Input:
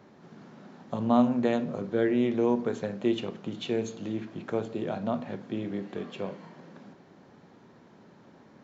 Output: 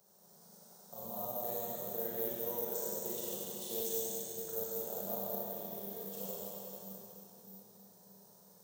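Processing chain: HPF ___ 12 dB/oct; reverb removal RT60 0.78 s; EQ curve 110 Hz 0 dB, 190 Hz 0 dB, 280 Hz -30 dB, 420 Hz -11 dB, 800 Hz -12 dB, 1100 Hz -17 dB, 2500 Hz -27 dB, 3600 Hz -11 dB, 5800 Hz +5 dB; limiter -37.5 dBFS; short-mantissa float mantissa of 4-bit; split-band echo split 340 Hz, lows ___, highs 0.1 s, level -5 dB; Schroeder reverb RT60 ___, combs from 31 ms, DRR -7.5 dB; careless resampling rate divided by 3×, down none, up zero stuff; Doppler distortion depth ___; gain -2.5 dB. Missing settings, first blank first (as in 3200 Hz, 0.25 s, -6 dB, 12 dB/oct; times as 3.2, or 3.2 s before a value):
430 Hz, 0.621 s, 2.9 s, 0.12 ms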